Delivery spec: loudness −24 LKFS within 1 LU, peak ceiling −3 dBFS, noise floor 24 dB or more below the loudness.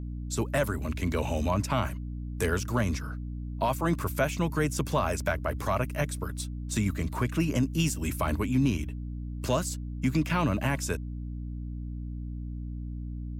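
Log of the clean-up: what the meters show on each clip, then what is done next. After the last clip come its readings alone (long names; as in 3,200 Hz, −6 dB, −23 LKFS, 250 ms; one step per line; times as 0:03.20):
mains hum 60 Hz; hum harmonics up to 300 Hz; level of the hum −33 dBFS; integrated loudness −30.5 LKFS; sample peak −15.0 dBFS; target loudness −24.0 LKFS
→ mains-hum notches 60/120/180/240/300 Hz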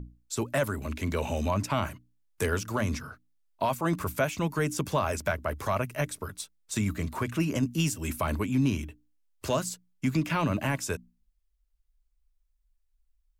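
mains hum none found; integrated loudness −30.5 LKFS; sample peak −16.0 dBFS; target loudness −24.0 LKFS
→ level +6.5 dB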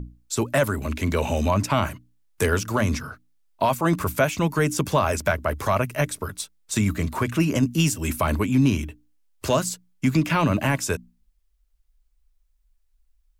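integrated loudness −24.0 LKFS; sample peak −9.5 dBFS; background noise floor −66 dBFS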